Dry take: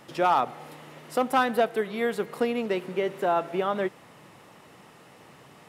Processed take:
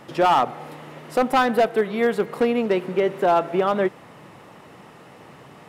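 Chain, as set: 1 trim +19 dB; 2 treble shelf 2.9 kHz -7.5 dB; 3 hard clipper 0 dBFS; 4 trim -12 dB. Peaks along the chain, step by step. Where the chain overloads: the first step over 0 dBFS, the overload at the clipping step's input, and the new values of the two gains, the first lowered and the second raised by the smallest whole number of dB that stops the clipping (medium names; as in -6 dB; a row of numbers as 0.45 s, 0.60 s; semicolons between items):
+7.5 dBFS, +6.5 dBFS, 0.0 dBFS, -12.0 dBFS; step 1, 6.5 dB; step 1 +12 dB, step 4 -5 dB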